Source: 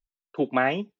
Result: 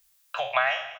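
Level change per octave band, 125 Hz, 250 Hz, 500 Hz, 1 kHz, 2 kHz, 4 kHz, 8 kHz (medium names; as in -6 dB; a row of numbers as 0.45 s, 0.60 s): -19.0 dB, under -35 dB, -4.0 dB, +0.5 dB, +3.0 dB, +7.0 dB, no reading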